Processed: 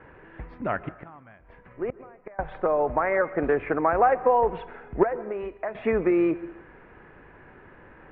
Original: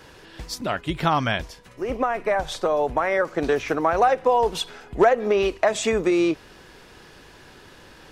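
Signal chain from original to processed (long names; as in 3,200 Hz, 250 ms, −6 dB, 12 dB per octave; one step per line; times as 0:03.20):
Butterworth low-pass 2,200 Hz 36 dB per octave
0:00.80–0:02.39: gate with flip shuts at −18 dBFS, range −25 dB
0:05.03–0:05.75: tuned comb filter 490 Hz, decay 0.46 s, mix 70%
on a send: convolution reverb RT60 0.75 s, pre-delay 118 ms, DRR 17 dB
on the sum: level −1.5 dB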